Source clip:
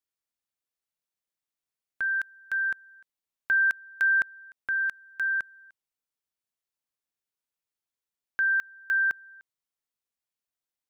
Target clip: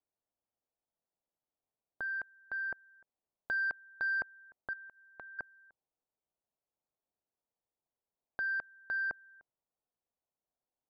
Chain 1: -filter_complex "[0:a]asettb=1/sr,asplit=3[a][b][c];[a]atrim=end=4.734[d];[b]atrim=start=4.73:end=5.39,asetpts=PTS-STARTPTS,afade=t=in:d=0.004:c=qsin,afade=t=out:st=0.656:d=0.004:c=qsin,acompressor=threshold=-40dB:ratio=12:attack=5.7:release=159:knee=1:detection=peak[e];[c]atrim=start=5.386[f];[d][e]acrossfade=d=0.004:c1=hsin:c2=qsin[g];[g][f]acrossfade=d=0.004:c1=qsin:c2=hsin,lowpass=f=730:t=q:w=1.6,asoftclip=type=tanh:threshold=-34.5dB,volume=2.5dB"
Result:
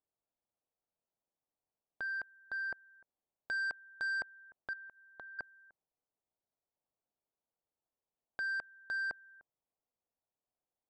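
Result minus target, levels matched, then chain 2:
soft clip: distortion +11 dB
-filter_complex "[0:a]asettb=1/sr,asplit=3[a][b][c];[a]atrim=end=4.734[d];[b]atrim=start=4.73:end=5.39,asetpts=PTS-STARTPTS,afade=t=in:d=0.004:c=qsin,afade=t=out:st=0.656:d=0.004:c=qsin,acompressor=threshold=-40dB:ratio=12:attack=5.7:release=159:knee=1:detection=peak[e];[c]atrim=start=5.386[f];[d][e]acrossfade=d=0.004:c1=hsin:c2=qsin[g];[g][f]acrossfade=d=0.004:c1=qsin:c2=hsin,lowpass=f=730:t=q:w=1.6,asoftclip=type=tanh:threshold=-27.5dB,volume=2.5dB"

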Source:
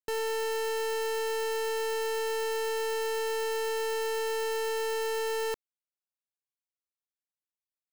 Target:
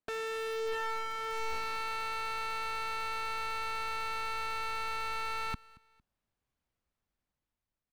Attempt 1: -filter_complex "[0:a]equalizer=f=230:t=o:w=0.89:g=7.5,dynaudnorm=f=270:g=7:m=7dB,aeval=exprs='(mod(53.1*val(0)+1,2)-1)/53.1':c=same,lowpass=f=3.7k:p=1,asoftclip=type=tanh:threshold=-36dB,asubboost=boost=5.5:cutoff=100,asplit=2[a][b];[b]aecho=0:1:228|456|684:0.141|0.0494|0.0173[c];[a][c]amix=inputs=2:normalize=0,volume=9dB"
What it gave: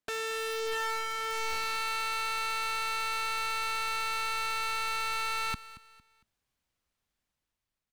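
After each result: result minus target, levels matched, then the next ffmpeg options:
echo-to-direct +6 dB; 4000 Hz band +3.0 dB
-filter_complex "[0:a]equalizer=f=230:t=o:w=0.89:g=7.5,dynaudnorm=f=270:g=7:m=7dB,aeval=exprs='(mod(53.1*val(0)+1,2)-1)/53.1':c=same,lowpass=f=3.7k:p=1,asoftclip=type=tanh:threshold=-36dB,asubboost=boost=5.5:cutoff=100,asplit=2[a][b];[b]aecho=0:1:228|456:0.0708|0.0248[c];[a][c]amix=inputs=2:normalize=0,volume=9dB"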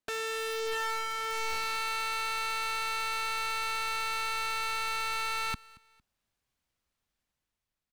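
4000 Hz band +3.0 dB
-filter_complex "[0:a]equalizer=f=230:t=o:w=0.89:g=7.5,dynaudnorm=f=270:g=7:m=7dB,aeval=exprs='(mod(53.1*val(0)+1,2)-1)/53.1':c=same,lowpass=f=1.1k:p=1,asoftclip=type=tanh:threshold=-36dB,asubboost=boost=5.5:cutoff=100,asplit=2[a][b];[b]aecho=0:1:228|456:0.0708|0.0248[c];[a][c]amix=inputs=2:normalize=0,volume=9dB"

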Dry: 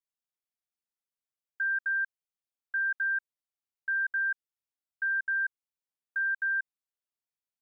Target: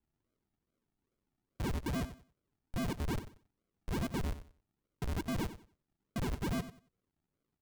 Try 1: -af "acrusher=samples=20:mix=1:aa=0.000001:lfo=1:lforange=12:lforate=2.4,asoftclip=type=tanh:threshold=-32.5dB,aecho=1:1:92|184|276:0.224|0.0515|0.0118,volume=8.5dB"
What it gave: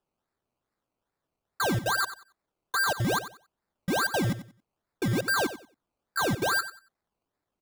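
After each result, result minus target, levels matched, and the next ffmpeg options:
decimation with a swept rate: distortion -15 dB; soft clip: distortion -6 dB
-af "acrusher=samples=68:mix=1:aa=0.000001:lfo=1:lforange=40.8:lforate=2.4,asoftclip=type=tanh:threshold=-32.5dB,aecho=1:1:92|184|276:0.224|0.0515|0.0118,volume=8.5dB"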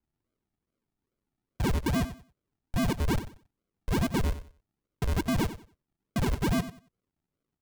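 soft clip: distortion -5 dB
-af "acrusher=samples=68:mix=1:aa=0.000001:lfo=1:lforange=40.8:lforate=2.4,asoftclip=type=tanh:threshold=-42dB,aecho=1:1:92|184|276:0.224|0.0515|0.0118,volume=8.5dB"

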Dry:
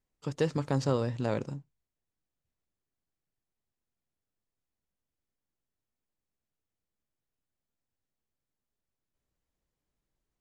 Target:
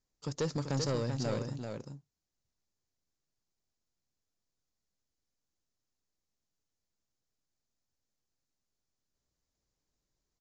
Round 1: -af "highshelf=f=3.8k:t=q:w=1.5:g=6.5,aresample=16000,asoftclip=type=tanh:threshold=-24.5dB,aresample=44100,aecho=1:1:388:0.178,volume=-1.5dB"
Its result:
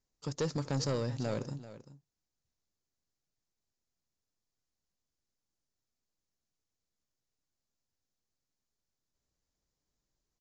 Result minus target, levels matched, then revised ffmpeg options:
echo-to-direct -9 dB
-af "highshelf=f=3.8k:t=q:w=1.5:g=6.5,aresample=16000,asoftclip=type=tanh:threshold=-24.5dB,aresample=44100,aecho=1:1:388:0.501,volume=-1.5dB"

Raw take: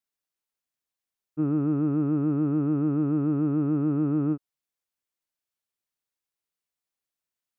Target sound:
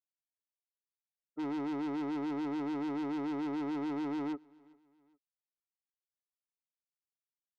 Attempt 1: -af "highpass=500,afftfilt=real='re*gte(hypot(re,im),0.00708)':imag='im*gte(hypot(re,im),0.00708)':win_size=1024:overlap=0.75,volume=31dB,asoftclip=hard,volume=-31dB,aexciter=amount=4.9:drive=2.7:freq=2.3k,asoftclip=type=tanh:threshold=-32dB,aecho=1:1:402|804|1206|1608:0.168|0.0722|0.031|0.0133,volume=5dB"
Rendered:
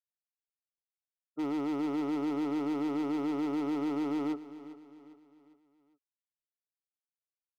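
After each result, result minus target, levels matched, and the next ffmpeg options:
echo-to-direct +11.5 dB; soft clip: distortion -7 dB
-af "highpass=500,afftfilt=real='re*gte(hypot(re,im),0.00708)':imag='im*gte(hypot(re,im),0.00708)':win_size=1024:overlap=0.75,volume=31dB,asoftclip=hard,volume=-31dB,aexciter=amount=4.9:drive=2.7:freq=2.3k,asoftclip=type=tanh:threshold=-32dB,aecho=1:1:402|804:0.0447|0.0192,volume=5dB"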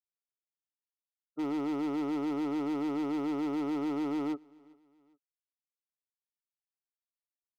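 soft clip: distortion -7 dB
-af "highpass=500,afftfilt=real='re*gte(hypot(re,im),0.00708)':imag='im*gte(hypot(re,im),0.00708)':win_size=1024:overlap=0.75,volume=31dB,asoftclip=hard,volume=-31dB,aexciter=amount=4.9:drive=2.7:freq=2.3k,asoftclip=type=tanh:threshold=-38dB,aecho=1:1:402|804:0.0447|0.0192,volume=5dB"

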